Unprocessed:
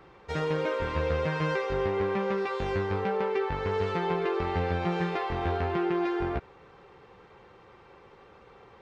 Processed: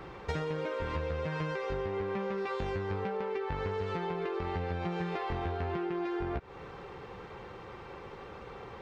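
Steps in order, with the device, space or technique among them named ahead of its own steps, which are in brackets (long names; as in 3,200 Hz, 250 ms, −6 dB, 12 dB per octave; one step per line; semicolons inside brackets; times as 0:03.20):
serial compression, leveller first (downward compressor 2 to 1, threshold −34 dBFS, peak gain reduction 6 dB; downward compressor 10 to 1, threshold −39 dBFS, peak gain reduction 10.5 dB)
low-shelf EQ 200 Hz +3.5 dB
level +7 dB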